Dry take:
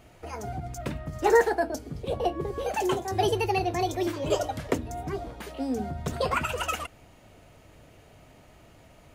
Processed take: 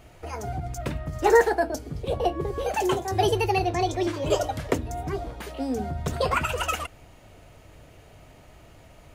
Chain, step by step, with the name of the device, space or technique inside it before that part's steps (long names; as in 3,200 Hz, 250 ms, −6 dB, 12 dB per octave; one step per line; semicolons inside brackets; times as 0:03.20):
0:03.70–0:04.14: low-pass filter 8,500 Hz 12 dB per octave
low shelf boost with a cut just above (low-shelf EQ 75 Hz +5 dB; parametric band 220 Hz −3 dB 0.75 octaves)
level +2.5 dB